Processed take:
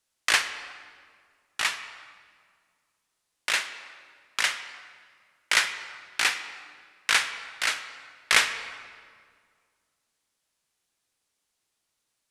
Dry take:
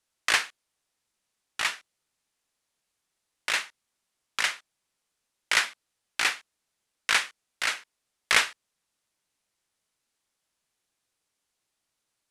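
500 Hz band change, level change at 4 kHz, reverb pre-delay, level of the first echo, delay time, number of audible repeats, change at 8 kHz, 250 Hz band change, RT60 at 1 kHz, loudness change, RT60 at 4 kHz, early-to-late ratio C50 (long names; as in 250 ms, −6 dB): +0.5 dB, +2.0 dB, 23 ms, no echo audible, no echo audible, no echo audible, +2.5 dB, +0.5 dB, 1.9 s, +1.0 dB, 1.4 s, 10.5 dB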